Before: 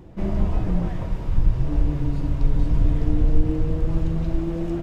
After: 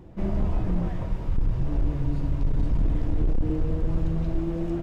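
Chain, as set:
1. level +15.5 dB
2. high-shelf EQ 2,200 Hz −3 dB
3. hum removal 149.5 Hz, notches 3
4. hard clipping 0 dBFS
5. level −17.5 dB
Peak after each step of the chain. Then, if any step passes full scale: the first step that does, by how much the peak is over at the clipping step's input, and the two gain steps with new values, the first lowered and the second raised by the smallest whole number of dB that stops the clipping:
+9.5, +9.5, +9.5, 0.0, −17.5 dBFS
step 1, 9.5 dB
step 1 +5.5 dB, step 5 −7.5 dB

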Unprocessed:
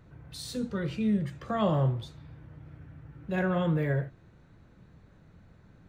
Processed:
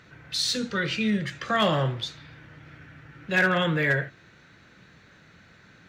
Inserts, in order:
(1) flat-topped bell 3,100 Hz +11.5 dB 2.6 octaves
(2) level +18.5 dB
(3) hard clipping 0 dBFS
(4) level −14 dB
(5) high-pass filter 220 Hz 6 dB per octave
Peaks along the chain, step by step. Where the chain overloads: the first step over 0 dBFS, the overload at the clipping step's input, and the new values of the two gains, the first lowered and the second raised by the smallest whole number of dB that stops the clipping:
−12.5, +6.0, 0.0, −14.0, −11.5 dBFS
step 2, 6.0 dB
step 2 +12.5 dB, step 4 −8 dB

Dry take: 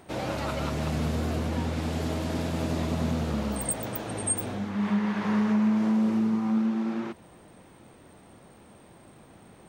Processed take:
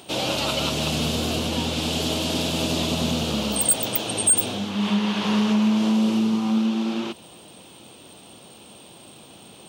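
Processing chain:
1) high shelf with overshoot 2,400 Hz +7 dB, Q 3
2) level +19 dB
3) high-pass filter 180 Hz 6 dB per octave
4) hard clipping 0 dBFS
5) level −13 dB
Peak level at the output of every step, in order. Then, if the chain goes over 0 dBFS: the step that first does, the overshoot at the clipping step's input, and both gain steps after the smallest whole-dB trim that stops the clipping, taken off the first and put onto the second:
−11.0, +8.0, +8.0, 0.0, −13.0 dBFS
step 2, 8.0 dB
step 2 +11 dB, step 5 −5 dB

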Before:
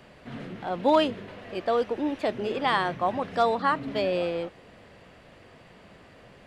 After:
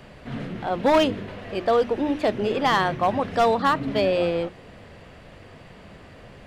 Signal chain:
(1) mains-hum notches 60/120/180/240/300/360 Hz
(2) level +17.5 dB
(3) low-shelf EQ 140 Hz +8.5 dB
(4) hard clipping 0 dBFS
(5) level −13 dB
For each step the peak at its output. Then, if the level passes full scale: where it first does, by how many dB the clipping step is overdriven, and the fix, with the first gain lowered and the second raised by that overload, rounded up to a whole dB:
−11.0, +6.5, +7.0, 0.0, −13.0 dBFS
step 2, 7.0 dB
step 2 +10.5 dB, step 5 −6 dB

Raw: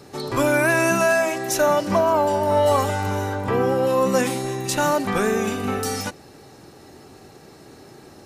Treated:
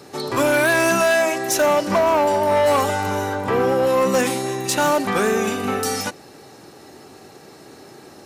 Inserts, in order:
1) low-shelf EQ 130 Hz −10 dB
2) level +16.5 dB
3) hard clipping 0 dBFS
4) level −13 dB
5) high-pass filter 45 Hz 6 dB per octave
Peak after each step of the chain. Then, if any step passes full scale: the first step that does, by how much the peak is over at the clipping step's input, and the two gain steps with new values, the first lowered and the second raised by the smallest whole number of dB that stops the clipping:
−8.5, +8.0, 0.0, −13.0, −11.5 dBFS
step 2, 8.0 dB
step 2 +8.5 dB, step 4 −5 dB

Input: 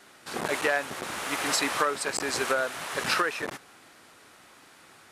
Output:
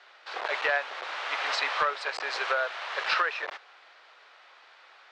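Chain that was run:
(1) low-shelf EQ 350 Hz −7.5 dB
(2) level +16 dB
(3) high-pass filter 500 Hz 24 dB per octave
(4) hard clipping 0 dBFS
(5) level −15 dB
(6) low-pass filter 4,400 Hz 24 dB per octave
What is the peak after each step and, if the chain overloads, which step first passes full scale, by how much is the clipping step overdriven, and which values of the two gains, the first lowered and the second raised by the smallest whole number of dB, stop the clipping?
−12.0, +4.0, +4.5, 0.0, −15.0, −14.0 dBFS
step 2, 4.5 dB
step 2 +11 dB, step 5 −10 dB

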